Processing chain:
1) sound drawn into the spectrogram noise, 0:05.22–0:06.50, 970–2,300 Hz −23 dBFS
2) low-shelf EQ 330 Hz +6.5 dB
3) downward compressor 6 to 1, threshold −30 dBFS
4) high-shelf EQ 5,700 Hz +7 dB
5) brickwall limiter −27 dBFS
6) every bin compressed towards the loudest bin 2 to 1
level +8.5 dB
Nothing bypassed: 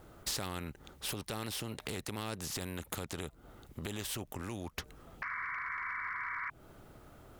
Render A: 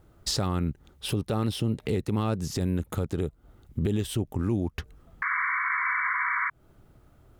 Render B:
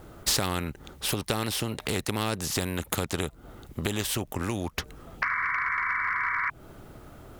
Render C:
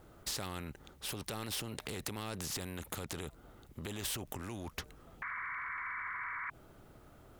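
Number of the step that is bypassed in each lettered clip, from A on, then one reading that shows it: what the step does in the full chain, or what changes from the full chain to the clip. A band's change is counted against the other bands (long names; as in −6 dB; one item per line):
6, 8 kHz band −9.0 dB
5, average gain reduction 2.5 dB
3, average gain reduction 11.0 dB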